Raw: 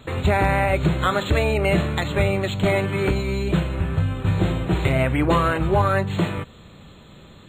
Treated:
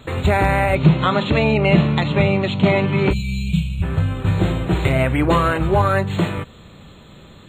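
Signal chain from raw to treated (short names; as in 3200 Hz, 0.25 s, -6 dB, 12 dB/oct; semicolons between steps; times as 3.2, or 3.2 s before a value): 0.75–3.11 speaker cabinet 100–5500 Hz, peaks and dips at 150 Hz +8 dB, 230 Hz +8 dB, 940 Hz +4 dB, 1600 Hz -5 dB, 2700 Hz +4 dB; 3.13–3.83 spectral gain 250–2200 Hz -27 dB; gain +2.5 dB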